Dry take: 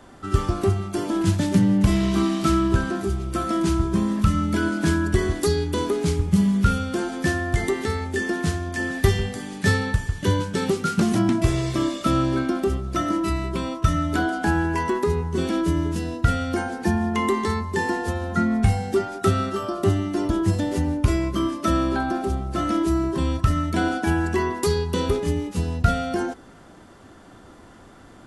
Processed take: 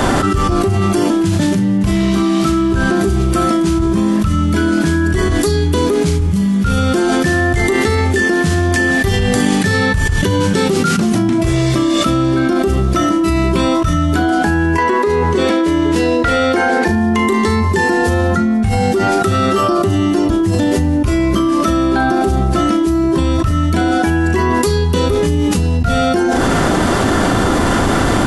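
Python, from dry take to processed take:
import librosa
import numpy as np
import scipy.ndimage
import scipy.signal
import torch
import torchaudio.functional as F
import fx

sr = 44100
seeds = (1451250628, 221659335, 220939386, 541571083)

y = fx.graphic_eq(x, sr, hz=(125, 250, 500, 1000, 2000, 4000, 8000), db=(-8, 5, 12, 7, 11, 7, 4), at=(14.78, 16.88))
y = fx.room_flutter(y, sr, wall_m=6.3, rt60_s=0.22)
y = fx.env_flatten(y, sr, amount_pct=100)
y = y * librosa.db_to_amplitude(-5.5)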